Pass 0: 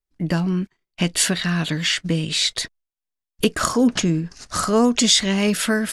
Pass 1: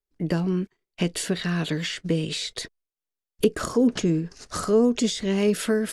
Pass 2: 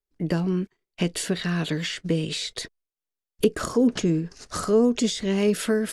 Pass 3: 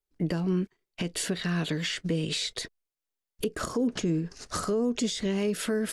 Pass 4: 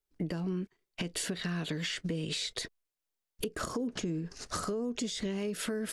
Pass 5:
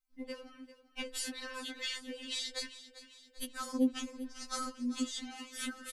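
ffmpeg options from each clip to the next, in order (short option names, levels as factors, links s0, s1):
-filter_complex "[0:a]equalizer=f=430:t=o:w=0.72:g=9,acrossover=split=440[s0][s1];[s1]acompressor=threshold=0.0708:ratio=10[s2];[s0][s2]amix=inputs=2:normalize=0,volume=0.596"
-af anull
-af "alimiter=limit=0.106:level=0:latency=1:release=246"
-af "acompressor=threshold=0.0251:ratio=4"
-af "aecho=1:1:394|788|1182|1576|1970:0.188|0.0961|0.049|0.025|0.0127,afftfilt=real='re*3.46*eq(mod(b,12),0)':imag='im*3.46*eq(mod(b,12),0)':win_size=2048:overlap=0.75"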